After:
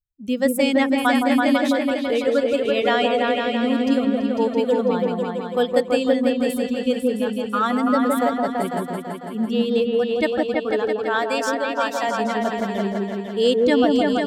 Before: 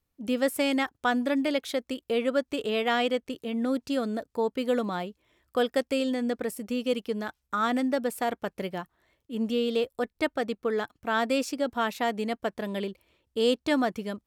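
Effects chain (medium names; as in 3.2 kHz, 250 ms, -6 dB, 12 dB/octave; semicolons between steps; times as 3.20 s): expander on every frequency bin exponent 1.5; 10.97–12.09 s: high-pass 540 Hz 6 dB/octave; delay with an opening low-pass 166 ms, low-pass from 750 Hz, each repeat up 2 oct, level 0 dB; trim +7 dB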